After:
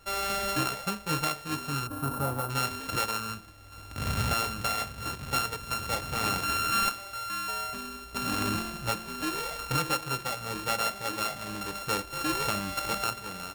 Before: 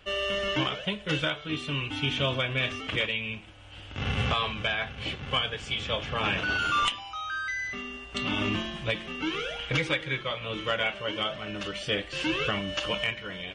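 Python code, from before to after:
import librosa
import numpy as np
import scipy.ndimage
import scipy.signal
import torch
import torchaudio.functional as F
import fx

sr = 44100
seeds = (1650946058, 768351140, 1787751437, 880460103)

y = np.r_[np.sort(x[:len(x) // 32 * 32].reshape(-1, 32), axis=1).ravel(), x[len(x) // 32 * 32:]]
y = fx.band_shelf(y, sr, hz=3700.0, db=-14.0, octaves=2.4, at=(1.87, 2.5))
y = y * librosa.db_to_amplitude(-1.0)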